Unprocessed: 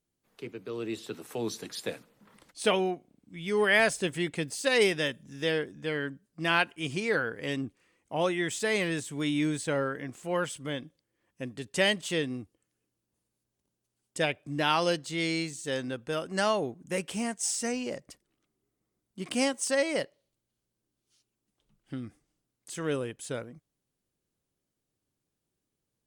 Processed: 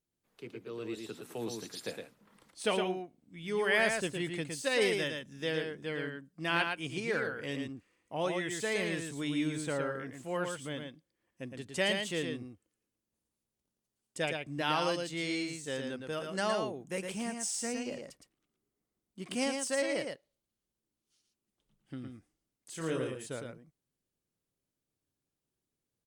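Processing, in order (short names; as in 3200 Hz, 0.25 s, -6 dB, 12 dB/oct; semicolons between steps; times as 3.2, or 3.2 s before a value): 22.71–23.19 doubler 31 ms -4 dB; on a send: echo 0.113 s -5 dB; on the sum: gain -5.5 dB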